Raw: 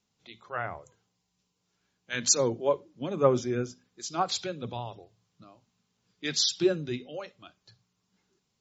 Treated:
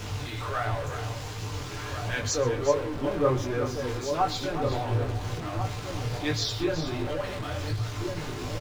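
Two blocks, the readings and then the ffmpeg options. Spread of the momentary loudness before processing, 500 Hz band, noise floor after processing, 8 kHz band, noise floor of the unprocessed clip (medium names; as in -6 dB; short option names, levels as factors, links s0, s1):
16 LU, +1.5 dB, -36 dBFS, no reading, -79 dBFS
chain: -filter_complex "[0:a]aeval=exprs='val(0)+0.5*0.0422*sgn(val(0))':c=same,lowpass=f=2200:p=1,lowshelf=f=120:t=q:w=3:g=9,bandreject=f=60:t=h:w=6,bandreject=f=120:t=h:w=6,bandreject=f=180:t=h:w=6,aecho=1:1:6.7:0.52,asplit=2[s0][s1];[s1]adelay=1399,volume=0.501,highshelf=f=4000:g=-31.5[s2];[s0][s2]amix=inputs=2:normalize=0,flanger=delay=18.5:depth=6:speed=1.4,asplit=2[s3][s4];[s4]aecho=0:1:124|373:0.112|0.316[s5];[s3][s5]amix=inputs=2:normalize=0,volume=1.19"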